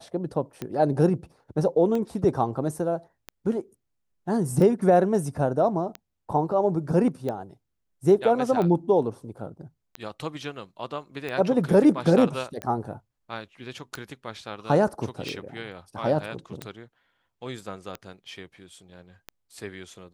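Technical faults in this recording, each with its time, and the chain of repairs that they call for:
tick 45 rpm -18 dBFS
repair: de-click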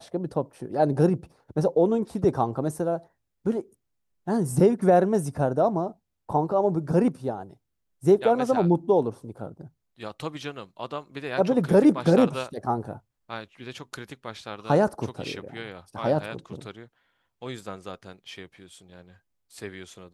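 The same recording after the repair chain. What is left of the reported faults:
nothing left

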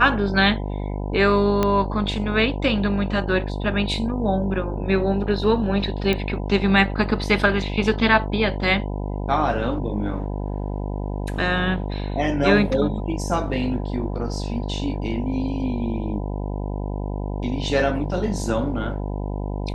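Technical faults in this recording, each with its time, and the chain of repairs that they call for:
buzz 50 Hz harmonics 20 -27 dBFS
1.63 s: pop -7 dBFS
6.13 s: pop -10 dBFS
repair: de-click; de-hum 50 Hz, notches 20

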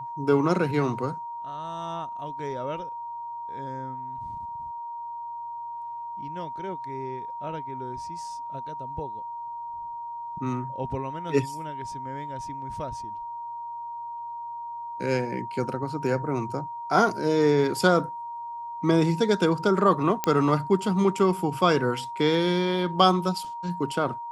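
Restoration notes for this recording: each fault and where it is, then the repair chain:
whine 940 Hz -33 dBFS
20.24 s: pop -8 dBFS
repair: de-click; band-stop 940 Hz, Q 30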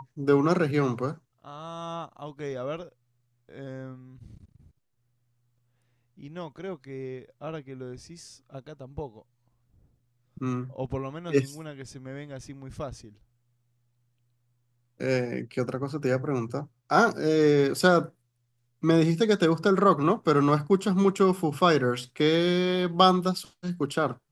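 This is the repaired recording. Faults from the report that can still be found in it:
nothing left

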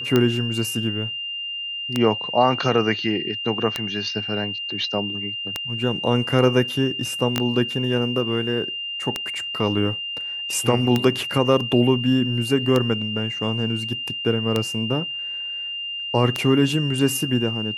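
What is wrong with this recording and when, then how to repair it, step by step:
tick 33 1/3 rpm -6 dBFS
whine 2.8 kHz -27 dBFS
7.38 s: pop -6 dBFS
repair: de-click; band-stop 2.8 kHz, Q 30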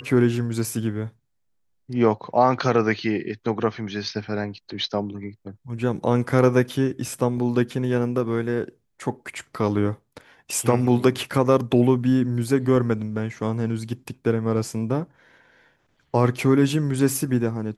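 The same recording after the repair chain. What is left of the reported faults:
7.38 s: pop

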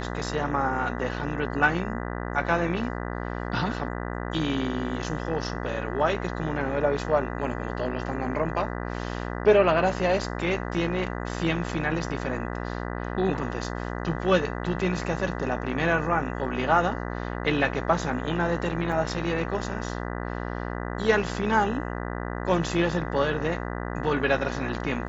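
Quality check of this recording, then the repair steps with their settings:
buzz 60 Hz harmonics 33 -32 dBFS
18.92 s: dropout 3.3 ms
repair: de-hum 60 Hz, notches 33; interpolate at 18.92 s, 3.3 ms

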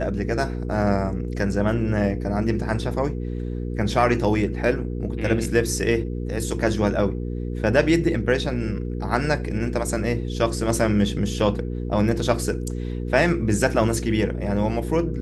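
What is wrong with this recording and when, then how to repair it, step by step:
hum 60 Hz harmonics 8 -28 dBFS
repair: de-hum 60 Hz, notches 8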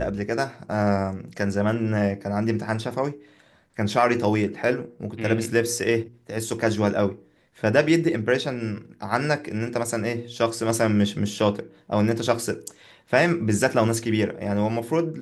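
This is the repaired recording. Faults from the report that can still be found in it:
nothing left

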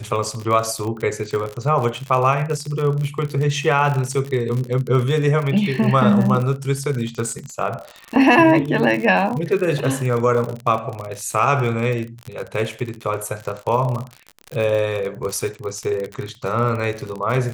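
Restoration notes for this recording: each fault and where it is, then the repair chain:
crackle 51 per s -24 dBFS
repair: de-click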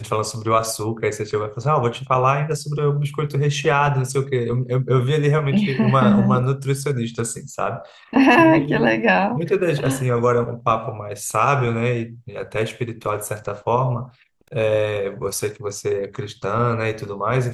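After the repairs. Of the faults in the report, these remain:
nothing left

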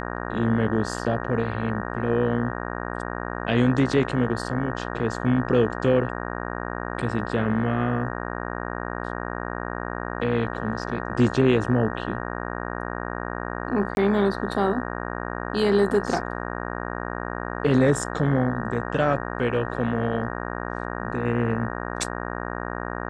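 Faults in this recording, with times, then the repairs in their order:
buzz 60 Hz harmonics 31 -31 dBFS
13.95–13.97 s: dropout 21 ms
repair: de-hum 60 Hz, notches 31; interpolate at 13.95 s, 21 ms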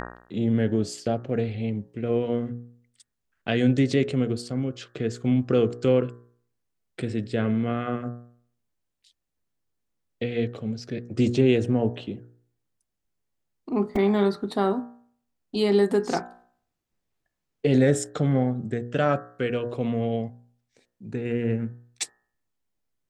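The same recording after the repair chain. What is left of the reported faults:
nothing left

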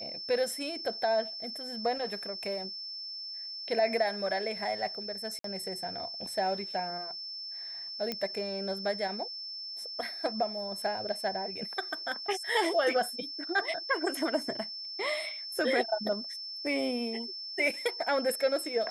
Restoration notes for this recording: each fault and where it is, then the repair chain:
whine 5.3 kHz -38 dBFS
5.39–5.44 s: dropout 53 ms
8.12 s: pop -18 dBFS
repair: de-click; band-stop 5.3 kHz, Q 30; interpolate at 5.39 s, 53 ms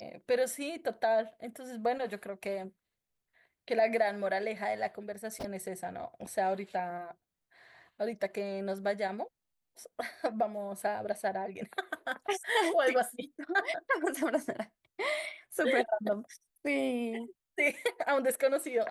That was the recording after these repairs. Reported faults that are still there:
nothing left

